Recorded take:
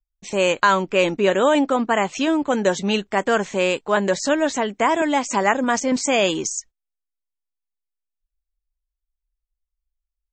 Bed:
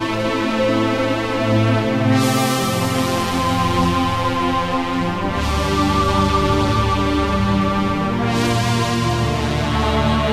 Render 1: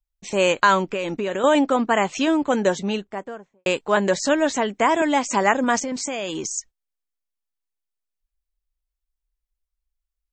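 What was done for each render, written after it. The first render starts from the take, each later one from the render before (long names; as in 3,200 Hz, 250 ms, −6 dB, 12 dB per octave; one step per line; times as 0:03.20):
0:00.86–0:01.44: downward compressor 10 to 1, threshold −21 dBFS
0:02.47–0:03.66: fade out and dull
0:05.81–0:06.55: downward compressor, threshold −24 dBFS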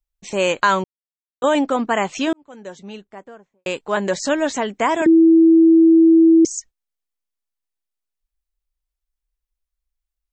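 0:00.84–0:01.42: silence
0:02.33–0:04.29: fade in
0:05.06–0:06.45: beep over 327 Hz −7.5 dBFS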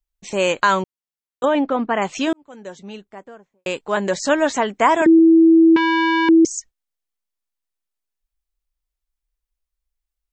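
0:01.45–0:02.02: high-frequency loss of the air 230 metres
0:04.13–0:05.19: dynamic equaliser 1,100 Hz, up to +5 dB, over −30 dBFS, Q 0.78
0:05.76–0:06.29: saturating transformer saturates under 1,300 Hz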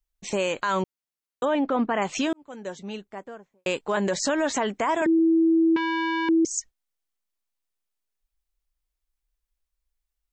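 downward compressor, threshold −16 dBFS, peak gain reduction 7 dB
brickwall limiter −16 dBFS, peak gain reduction 9.5 dB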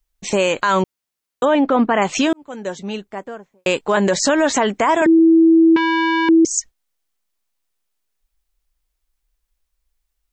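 level +8.5 dB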